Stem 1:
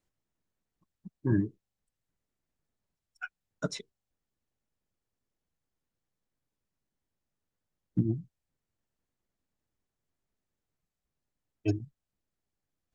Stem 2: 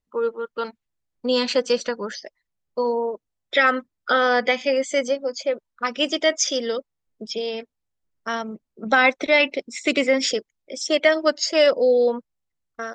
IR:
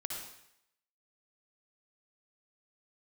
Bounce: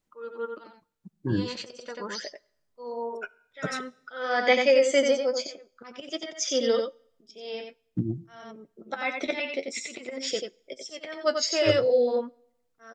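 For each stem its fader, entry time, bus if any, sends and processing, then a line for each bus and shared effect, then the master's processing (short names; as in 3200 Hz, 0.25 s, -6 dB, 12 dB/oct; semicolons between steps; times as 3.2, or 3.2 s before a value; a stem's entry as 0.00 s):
+1.0 dB, 0.00 s, send -21 dB, no echo send, dry
+3.0 dB, 0.00 s, send -23.5 dB, echo send -5.5 dB, auto swell 0.44 s; flange 0.48 Hz, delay 5.6 ms, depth 6.9 ms, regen +49%; auto duck -10 dB, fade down 0.25 s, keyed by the first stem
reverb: on, RT60 0.75 s, pre-delay 53 ms
echo: echo 90 ms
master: low shelf 170 Hz -4.5 dB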